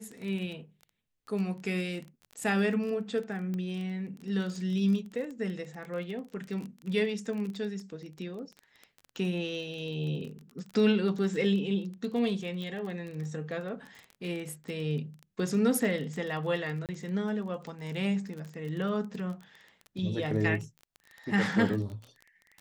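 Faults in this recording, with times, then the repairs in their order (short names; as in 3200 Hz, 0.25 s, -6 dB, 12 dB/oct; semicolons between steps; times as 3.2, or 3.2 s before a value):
crackle 24/s -36 dBFS
3.54 pop -25 dBFS
12.62 pop
16.86–16.89 gap 28 ms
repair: de-click; interpolate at 16.86, 28 ms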